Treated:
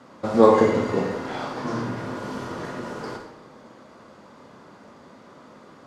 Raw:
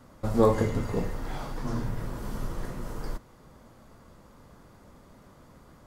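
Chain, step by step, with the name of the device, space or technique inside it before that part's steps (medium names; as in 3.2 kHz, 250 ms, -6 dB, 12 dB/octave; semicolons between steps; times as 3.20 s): supermarket ceiling speaker (band-pass 220–5500 Hz; reverberation RT60 0.90 s, pre-delay 27 ms, DRR 2.5 dB); trim +7 dB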